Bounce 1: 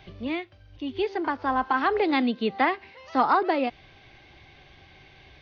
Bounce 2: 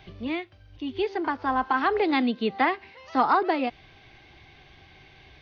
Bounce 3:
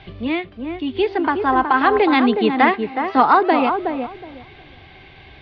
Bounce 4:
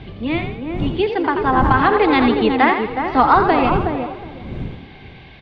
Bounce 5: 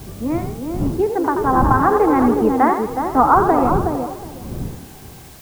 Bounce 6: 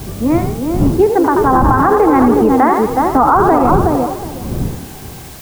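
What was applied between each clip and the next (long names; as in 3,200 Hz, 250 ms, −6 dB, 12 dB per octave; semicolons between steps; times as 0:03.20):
notch filter 560 Hz, Q 12
low-pass filter 4,200 Hz 24 dB per octave; tape delay 367 ms, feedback 23%, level −4 dB, low-pass 1,000 Hz; level +8 dB
wind on the microphone 190 Hz −28 dBFS; echo with shifted repeats 85 ms, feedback 42%, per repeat +45 Hz, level −8 dB
low-pass filter 1,400 Hz 24 dB per octave; in parallel at −5 dB: bit-depth reduction 6 bits, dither triangular; on the sum: level −3.5 dB
boost into a limiter +9 dB; level −1 dB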